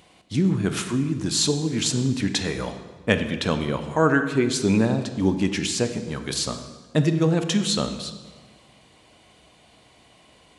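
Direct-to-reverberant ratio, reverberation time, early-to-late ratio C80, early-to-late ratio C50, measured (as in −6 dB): 8.0 dB, 1.4 s, 11.0 dB, 9.5 dB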